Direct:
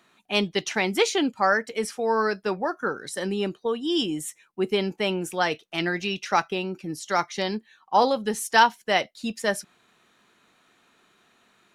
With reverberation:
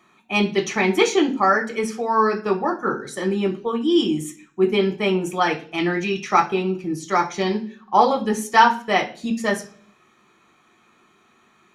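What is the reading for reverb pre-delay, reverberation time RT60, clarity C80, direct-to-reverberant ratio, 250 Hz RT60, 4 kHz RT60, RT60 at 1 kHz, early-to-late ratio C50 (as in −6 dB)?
3 ms, 0.45 s, 18.5 dB, 1.5 dB, 0.65 s, 0.45 s, 0.40 s, 14.0 dB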